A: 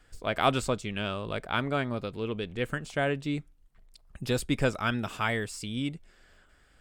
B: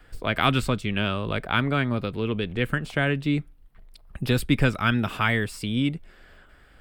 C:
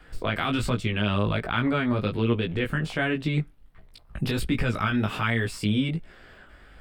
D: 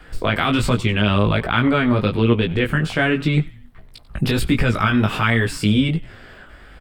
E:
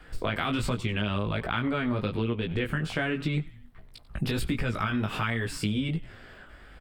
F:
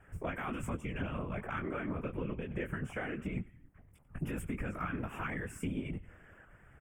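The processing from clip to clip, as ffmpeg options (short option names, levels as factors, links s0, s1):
-filter_complex "[0:a]equalizer=f=6800:w=1.2:g=-12,acrossover=split=320|1200[s0][s1][s2];[s1]acompressor=threshold=0.01:ratio=6[s3];[s0][s3][s2]amix=inputs=3:normalize=0,volume=2.66"
-af "highshelf=f=8800:g=-7,alimiter=limit=0.126:level=0:latency=1:release=72,flanger=delay=17:depth=2.7:speed=1.3,volume=2.11"
-filter_complex "[0:a]asplit=4[s0][s1][s2][s3];[s1]adelay=92,afreqshift=-130,volume=0.112[s4];[s2]adelay=184,afreqshift=-260,volume=0.0462[s5];[s3]adelay=276,afreqshift=-390,volume=0.0188[s6];[s0][s4][s5][s6]amix=inputs=4:normalize=0,volume=2.37"
-af "acompressor=threshold=0.126:ratio=6,volume=0.473"
-af "aeval=exprs='0.211*(cos(1*acos(clip(val(0)/0.211,-1,1)))-cos(1*PI/2))+0.015*(cos(3*acos(clip(val(0)/0.211,-1,1)))-cos(3*PI/2))':c=same,asuperstop=centerf=4200:order=4:qfactor=0.97,afftfilt=real='hypot(re,im)*cos(2*PI*random(0))':imag='hypot(re,im)*sin(2*PI*random(1))':win_size=512:overlap=0.75,volume=0.891"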